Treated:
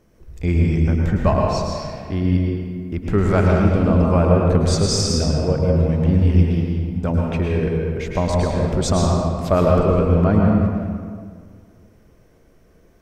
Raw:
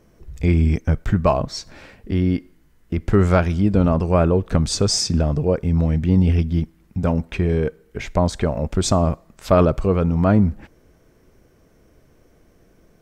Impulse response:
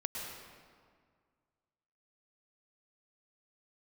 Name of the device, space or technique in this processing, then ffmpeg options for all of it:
stairwell: -filter_complex "[1:a]atrim=start_sample=2205[a];[0:a][a]afir=irnorm=-1:irlink=0,volume=-1dB"

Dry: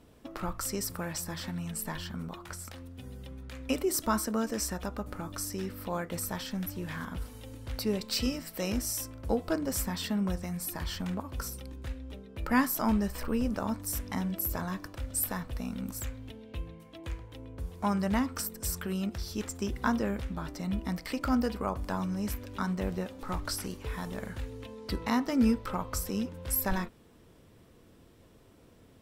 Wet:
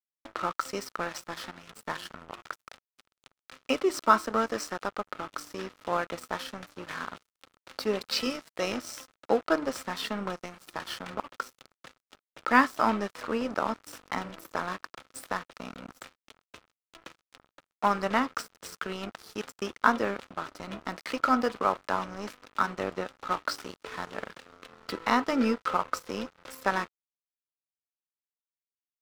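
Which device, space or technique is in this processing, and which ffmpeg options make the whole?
pocket radio on a weak battery: -af "highpass=360,lowpass=4.5k,aeval=exprs='sgn(val(0))*max(abs(val(0))-0.00531,0)':c=same,equalizer=f=1.3k:t=o:w=0.3:g=6.5,volume=7.5dB"

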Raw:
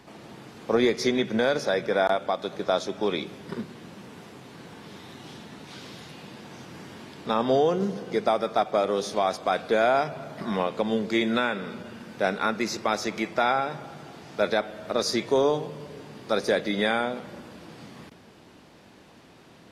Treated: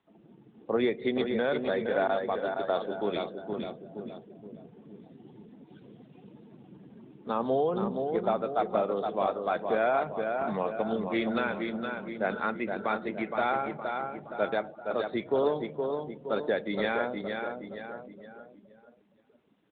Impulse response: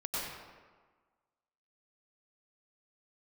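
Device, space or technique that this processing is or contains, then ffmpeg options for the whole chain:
mobile call with aggressive noise cancelling: -filter_complex "[0:a]asettb=1/sr,asplit=3[a][b][c];[a]atrim=end=14.494[d];[b]atrim=start=14.49:end=15.09,asetpts=PTS-STARTPTS,afade=t=in:d=0.004:c=qsin,afade=t=out:st=0.596:d=0.004:c=qsin,agate=range=-14dB:threshold=-35dB:ratio=16:detection=peak[e];[c]atrim=start=15.086[f];[d][e]acrossfade=d=0.004:c1=hsin:c2=qsin[g];[g][f]acrossfade=d=0.004:c1=qsin:c2=hsin,highpass=f=100:p=1,aecho=1:1:468|936|1404|1872|2340|2808:0.562|0.281|0.141|0.0703|0.0351|0.0176,afftdn=nr=17:nf=-36,volume=-4.5dB" -ar 8000 -c:a libopencore_amrnb -b:a 12200

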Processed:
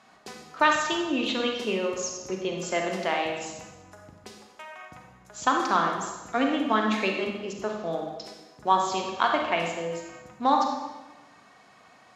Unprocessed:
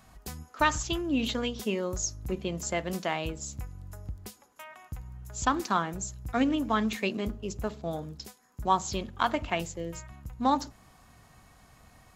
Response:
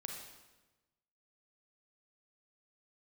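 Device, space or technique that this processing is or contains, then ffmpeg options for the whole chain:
supermarket ceiling speaker: -filter_complex "[0:a]highpass=310,lowpass=5.2k[a];[1:a]atrim=start_sample=2205[b];[a][b]afir=irnorm=-1:irlink=0,volume=7.5dB"

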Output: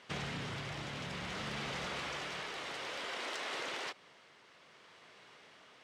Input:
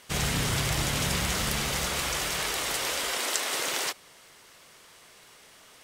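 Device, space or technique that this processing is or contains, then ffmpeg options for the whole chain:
AM radio: -af "highpass=120,lowpass=3.6k,acompressor=threshold=-33dB:ratio=6,asoftclip=type=tanh:threshold=-27dB,tremolo=f=0.57:d=0.28,volume=-2.5dB"

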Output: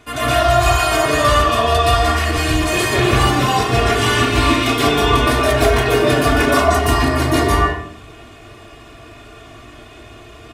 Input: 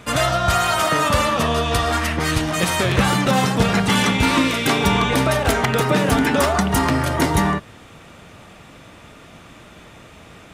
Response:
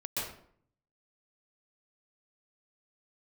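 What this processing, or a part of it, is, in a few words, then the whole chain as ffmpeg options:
microphone above a desk: -filter_complex "[0:a]aecho=1:1:2.8:0.79[a];[1:a]atrim=start_sample=2205[b];[a][b]afir=irnorm=-1:irlink=0,volume=-2.5dB"

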